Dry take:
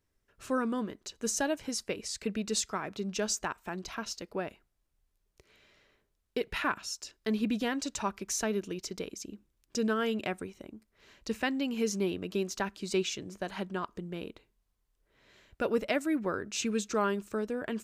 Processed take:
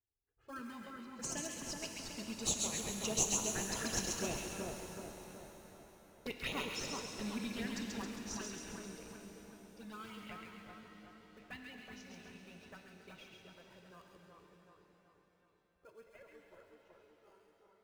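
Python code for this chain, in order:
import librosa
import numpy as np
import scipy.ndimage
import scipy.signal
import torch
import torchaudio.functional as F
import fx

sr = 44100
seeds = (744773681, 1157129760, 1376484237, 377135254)

p1 = fx.fade_out_tail(x, sr, length_s=2.99)
p2 = fx.doppler_pass(p1, sr, speed_mps=13, closest_m=14.0, pass_at_s=4.55)
p3 = fx.highpass(p2, sr, hz=170.0, slope=6)
p4 = fx.env_lowpass(p3, sr, base_hz=860.0, full_db=-37.0)
p5 = fx.peak_eq(p4, sr, hz=380.0, db=-12.5, octaves=3.0)
p6 = fx.sample_hold(p5, sr, seeds[0], rate_hz=1900.0, jitter_pct=0)
p7 = p5 + (p6 * 10.0 ** (-7.0 / 20.0))
p8 = fx.env_flanger(p7, sr, rest_ms=2.5, full_db=-40.5)
p9 = fx.filter_lfo_notch(p8, sr, shape='saw_up', hz=7.3, low_hz=470.0, high_hz=5200.0, q=1.9)
p10 = p9 + fx.echo_split(p9, sr, split_hz=1600.0, low_ms=375, high_ms=135, feedback_pct=52, wet_db=-3.0, dry=0)
p11 = fx.rev_shimmer(p10, sr, seeds[1], rt60_s=3.5, semitones=7, shimmer_db=-8, drr_db=5.0)
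y = p11 * 10.0 ** (6.5 / 20.0)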